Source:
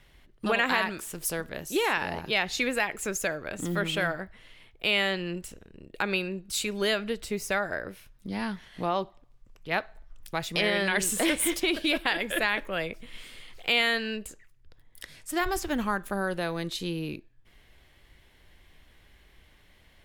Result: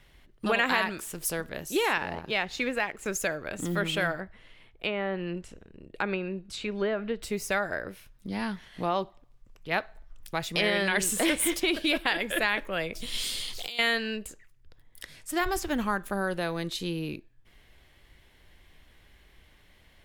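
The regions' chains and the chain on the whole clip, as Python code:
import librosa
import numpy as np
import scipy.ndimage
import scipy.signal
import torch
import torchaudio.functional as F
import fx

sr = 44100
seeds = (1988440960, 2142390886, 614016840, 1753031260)

y = fx.chain(x, sr, fx.law_mismatch(coded='A'),
    fx.high_shelf(hz=5100.0, db=-11.0), at=(1.98, 3.06))
y = fx.chain(y, sr, fx.env_lowpass_down(base_hz=1300.0, full_db=-22.0),
    fx.high_shelf(hz=3400.0, db=-7.0),
    fx.hum_notches(base_hz=50, count=3), at=(4.2, 7.22))
y = fx.chain(y, sr, fx.high_shelf_res(hz=3000.0, db=11.5, q=1.5),
    fx.over_compress(threshold_db=-32.0, ratio=-1.0), at=(12.95, 13.79))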